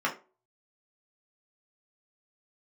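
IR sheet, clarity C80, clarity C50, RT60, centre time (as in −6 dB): 19.0 dB, 12.5 dB, 0.35 s, 16 ms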